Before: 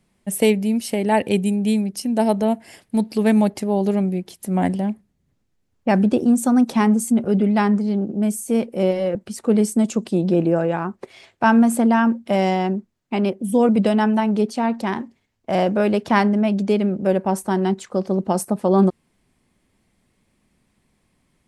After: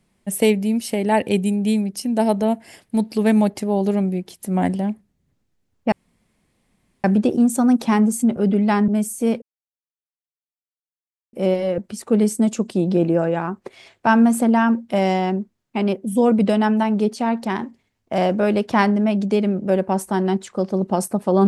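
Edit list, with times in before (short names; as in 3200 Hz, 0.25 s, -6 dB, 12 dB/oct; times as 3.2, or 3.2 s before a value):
5.92 insert room tone 1.12 s
7.76–8.16 cut
8.7 insert silence 1.91 s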